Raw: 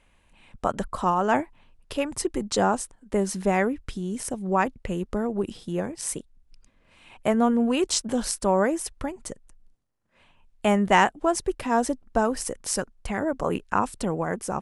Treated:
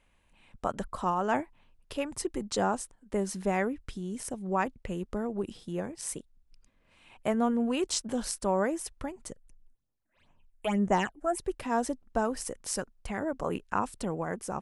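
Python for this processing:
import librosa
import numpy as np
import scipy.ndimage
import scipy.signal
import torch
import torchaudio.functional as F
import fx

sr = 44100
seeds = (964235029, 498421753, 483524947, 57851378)

y = fx.phaser_stages(x, sr, stages=8, low_hz=120.0, high_hz=4000.0, hz=fx.line((9.31, 3.8), (11.38, 1.1)), feedback_pct=45, at=(9.31, 11.38), fade=0.02)
y = F.gain(torch.from_numpy(y), -6.0).numpy()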